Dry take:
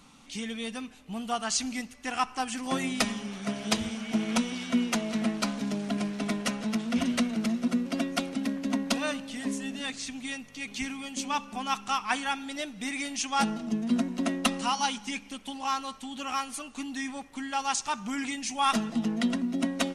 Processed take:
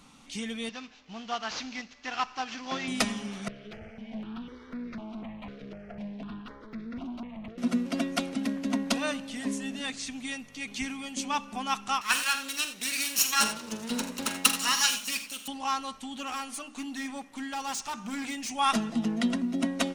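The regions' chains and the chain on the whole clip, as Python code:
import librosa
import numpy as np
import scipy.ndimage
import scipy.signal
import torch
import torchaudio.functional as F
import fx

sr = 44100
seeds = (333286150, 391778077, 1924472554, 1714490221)

y = fx.chain(x, sr, fx.cvsd(bps=32000),
    fx.low_shelf(hz=450.0, db=-9.0), at=(0.69, 2.88))
y = fx.chain(y, sr, fx.tube_stage(drive_db=33.0, bias=0.7),
    fx.air_absorb(metres=320.0),
    fx.phaser_held(hz=4.0, low_hz=240.0, high_hz=3000.0), at=(3.48, 7.58))
y = fx.chain(y, sr, fx.lower_of_two(delay_ms=0.73),
    fx.tilt_eq(slope=3.5),
    fx.echo_multitap(ms=(45, 81, 93), db=(-11.0, -13.5, -15.5)), at=(12.01, 15.48))
y = fx.chain(y, sr, fx.overload_stage(gain_db=31.0),
    fx.hum_notches(base_hz=50, count=9), at=(16.16, 18.5))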